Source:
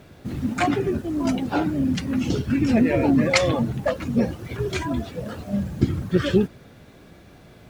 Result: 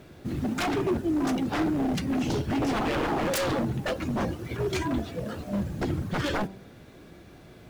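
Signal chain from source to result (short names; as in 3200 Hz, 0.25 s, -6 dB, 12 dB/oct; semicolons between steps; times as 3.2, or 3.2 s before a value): wavefolder -20.5 dBFS; bell 340 Hz +4.5 dB 0.43 oct; de-hum 96.69 Hz, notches 10; gain -2 dB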